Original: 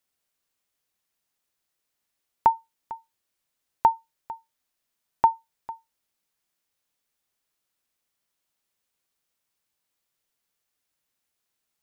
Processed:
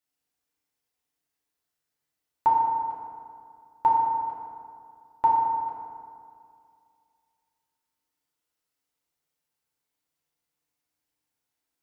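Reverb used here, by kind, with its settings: FDN reverb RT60 2.3 s, low-frequency decay 1.1×, high-frequency decay 0.5×, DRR -5.5 dB; trim -9 dB

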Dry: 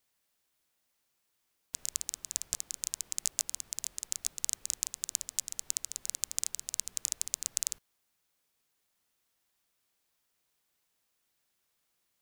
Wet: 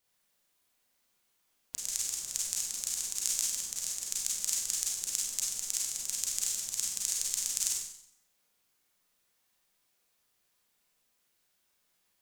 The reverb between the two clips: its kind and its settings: Schroeder reverb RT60 0.66 s, combs from 31 ms, DRR -4 dB; trim -2 dB

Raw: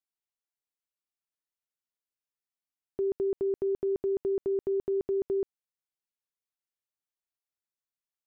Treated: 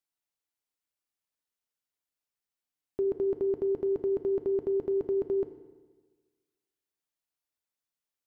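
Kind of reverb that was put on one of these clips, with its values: FDN reverb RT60 1.4 s, low-frequency decay 1.05×, high-frequency decay 0.95×, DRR 8 dB; trim +1.5 dB

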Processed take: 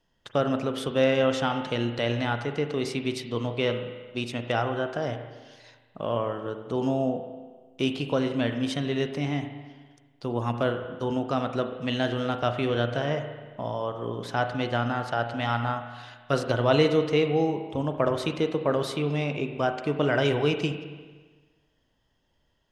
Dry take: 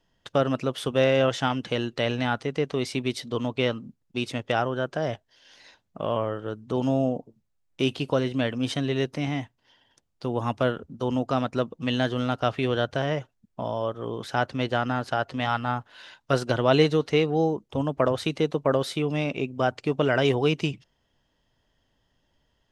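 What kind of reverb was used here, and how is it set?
spring tank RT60 1.4 s, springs 34/42 ms, chirp 60 ms, DRR 6.5 dB; trim -2 dB

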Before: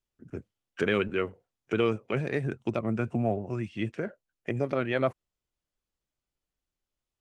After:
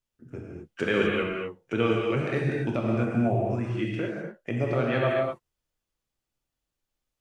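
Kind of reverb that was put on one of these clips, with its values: gated-style reverb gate 280 ms flat, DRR -2.5 dB; trim -1 dB

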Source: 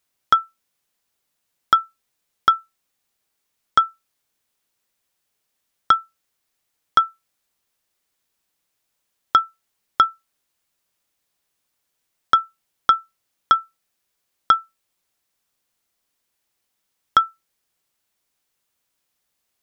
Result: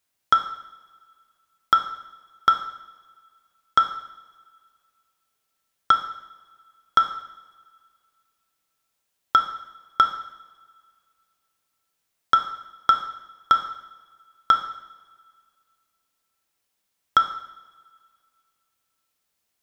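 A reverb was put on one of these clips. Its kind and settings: two-slope reverb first 0.81 s, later 2.3 s, from -19 dB, DRR 5 dB; trim -2.5 dB

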